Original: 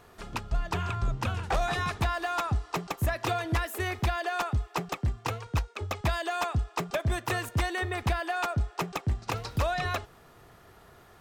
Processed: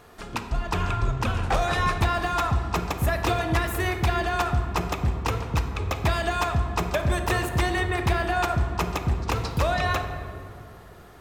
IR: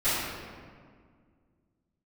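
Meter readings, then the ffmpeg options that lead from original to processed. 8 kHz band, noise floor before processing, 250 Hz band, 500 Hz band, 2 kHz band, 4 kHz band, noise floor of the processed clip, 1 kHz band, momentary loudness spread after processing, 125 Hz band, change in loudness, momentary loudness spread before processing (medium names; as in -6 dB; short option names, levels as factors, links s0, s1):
+4.5 dB, -55 dBFS, +6.5 dB, +5.5 dB, +5.0 dB, +4.5 dB, -45 dBFS, +5.5 dB, 6 LU, +5.0 dB, +5.0 dB, 4 LU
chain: -filter_complex "[0:a]asplit=2[s0][s1];[s1]equalizer=f=360:w=2.4:g=7[s2];[1:a]atrim=start_sample=2205,asetrate=34398,aresample=44100[s3];[s2][s3]afir=irnorm=-1:irlink=0,volume=0.0944[s4];[s0][s4]amix=inputs=2:normalize=0,volume=1.5"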